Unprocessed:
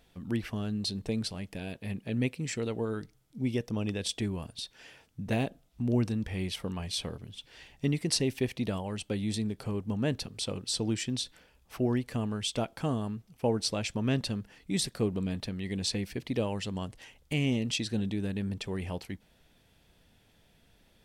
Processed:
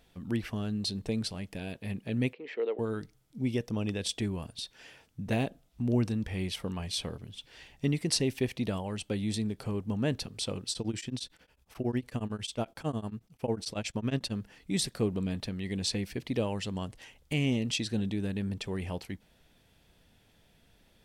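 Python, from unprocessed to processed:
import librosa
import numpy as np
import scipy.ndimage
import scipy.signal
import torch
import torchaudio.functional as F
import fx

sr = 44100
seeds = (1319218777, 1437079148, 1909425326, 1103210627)

y = fx.cabinet(x, sr, low_hz=360.0, low_slope=24, high_hz=2900.0, hz=(450.0, 1400.0, 2500.0), db=(6, -4, -4), at=(2.33, 2.79))
y = fx.tremolo_abs(y, sr, hz=11.0, at=(10.7, 14.32))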